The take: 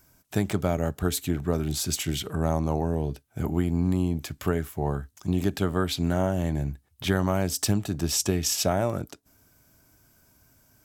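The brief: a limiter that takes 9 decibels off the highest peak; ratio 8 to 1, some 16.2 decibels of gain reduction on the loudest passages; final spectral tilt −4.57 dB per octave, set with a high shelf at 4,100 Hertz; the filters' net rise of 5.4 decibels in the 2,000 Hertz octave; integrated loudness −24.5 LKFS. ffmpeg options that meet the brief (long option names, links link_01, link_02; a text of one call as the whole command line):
ffmpeg -i in.wav -af "equalizer=frequency=2000:width_type=o:gain=8.5,highshelf=frequency=4100:gain=-5.5,acompressor=threshold=-36dB:ratio=8,volume=18.5dB,alimiter=limit=-13dB:level=0:latency=1" out.wav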